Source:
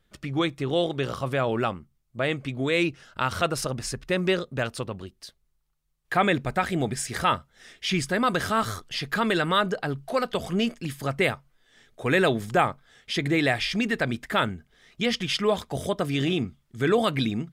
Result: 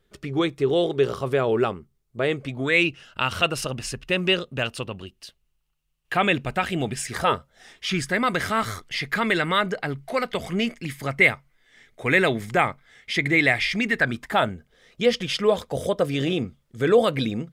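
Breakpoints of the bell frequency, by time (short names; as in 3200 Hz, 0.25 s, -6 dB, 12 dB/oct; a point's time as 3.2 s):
bell +12 dB 0.32 oct
2.4 s 410 Hz
2.81 s 2800 Hz
7.01 s 2800 Hz
7.32 s 400 Hz
8.15 s 2100 Hz
13.94 s 2100 Hz
14.54 s 510 Hz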